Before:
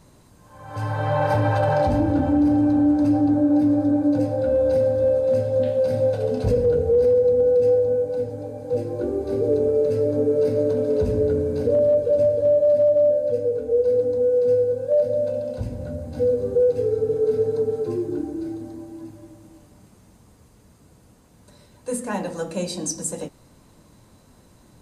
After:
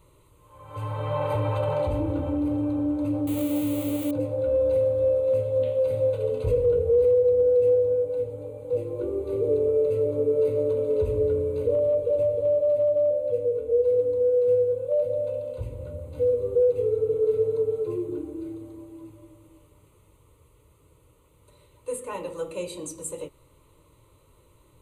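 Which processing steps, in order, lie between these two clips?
3.27–4.11 s: zero-crossing glitches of -17.5 dBFS; static phaser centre 1.1 kHz, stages 8; trim -2 dB

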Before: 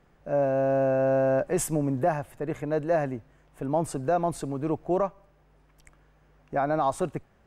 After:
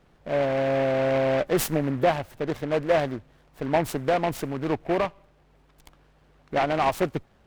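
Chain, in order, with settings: harmonic-percussive split percussive +4 dB; delay time shaken by noise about 1.3 kHz, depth 0.066 ms

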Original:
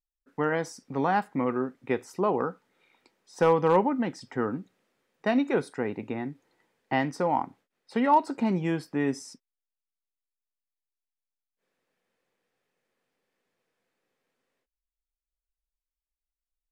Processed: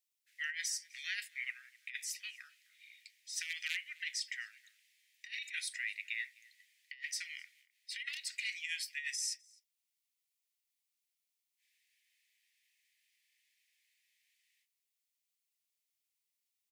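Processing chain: steep high-pass 1.9 kHz 72 dB/octave; treble shelf 6.4 kHz +2 dB; compressor with a negative ratio -44 dBFS, ratio -0.5; echo from a far wall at 44 m, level -23 dB; trim +5.5 dB

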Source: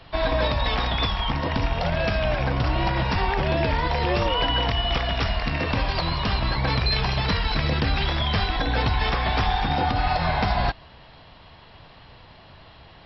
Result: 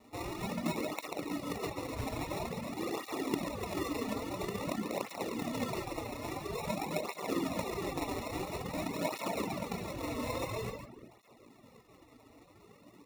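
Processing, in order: in parallel at -8 dB: hard clipper -28.5 dBFS, distortion -6 dB; 1.59–2.72 s: on the sum: LPC vocoder at 8 kHz whisper; Butterworth band-pass 2 kHz, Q 3.9; 8.27–8.83 s: integer overflow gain 29 dB; feedback delay 141 ms, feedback 18%, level -6 dB; sample-and-hold 28×; on a send at -4.5 dB: reverberation RT60 1.3 s, pre-delay 10 ms; on the sum: reverb removal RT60 0.58 s; cancelling through-zero flanger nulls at 0.49 Hz, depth 6 ms; trim +2 dB

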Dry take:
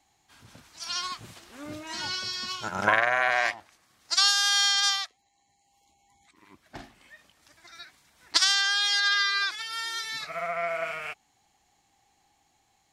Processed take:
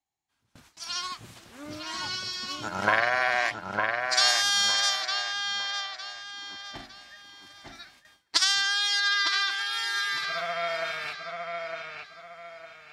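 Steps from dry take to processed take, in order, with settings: on a send: feedback echo behind a low-pass 907 ms, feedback 33%, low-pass 3.9 kHz, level -4 dB; on the sum: gate with hold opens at -41 dBFS; trim -1 dB

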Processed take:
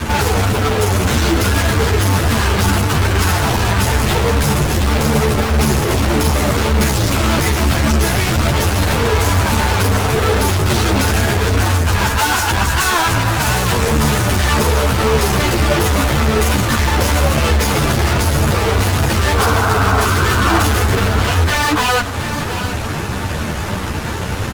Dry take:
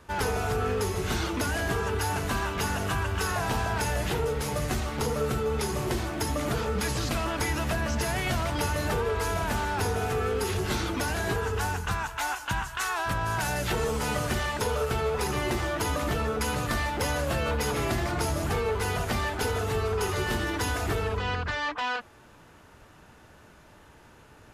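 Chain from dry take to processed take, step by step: peaking EQ 110 Hz +9.5 dB 2 oct; in parallel at -2 dB: compression, threshold -36 dBFS, peak gain reduction 17 dB; on the sum: fuzz box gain 44 dB, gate -47 dBFS; 19.37–20.64 s: painted sound noise 630–1600 Hz -17 dBFS; 20.05–20.46 s: Butterworth band-stop 760 Hz, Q 1.6; on a send: delay 717 ms -9.5 dB; on the sum: three-phase chorus; trim +2 dB

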